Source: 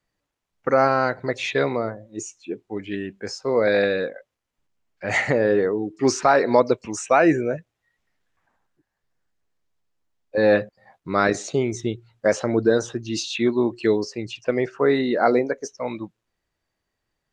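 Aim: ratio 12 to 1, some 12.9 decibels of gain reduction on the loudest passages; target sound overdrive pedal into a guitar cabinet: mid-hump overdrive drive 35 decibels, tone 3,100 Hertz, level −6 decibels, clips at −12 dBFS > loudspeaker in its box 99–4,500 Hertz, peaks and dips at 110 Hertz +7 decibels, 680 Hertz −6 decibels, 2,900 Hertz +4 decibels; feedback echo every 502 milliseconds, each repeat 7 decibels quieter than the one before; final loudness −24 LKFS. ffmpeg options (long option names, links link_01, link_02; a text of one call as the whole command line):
ffmpeg -i in.wav -filter_complex "[0:a]acompressor=threshold=-25dB:ratio=12,aecho=1:1:502|1004|1506|2008|2510:0.447|0.201|0.0905|0.0407|0.0183,asplit=2[link_01][link_02];[link_02]highpass=frequency=720:poles=1,volume=35dB,asoftclip=type=tanh:threshold=-12dB[link_03];[link_01][link_03]amix=inputs=2:normalize=0,lowpass=frequency=3100:poles=1,volume=-6dB,highpass=99,equalizer=frequency=110:width_type=q:width=4:gain=7,equalizer=frequency=680:width_type=q:width=4:gain=-6,equalizer=frequency=2900:width_type=q:width=4:gain=4,lowpass=frequency=4500:width=0.5412,lowpass=frequency=4500:width=1.3066,volume=-3.5dB" out.wav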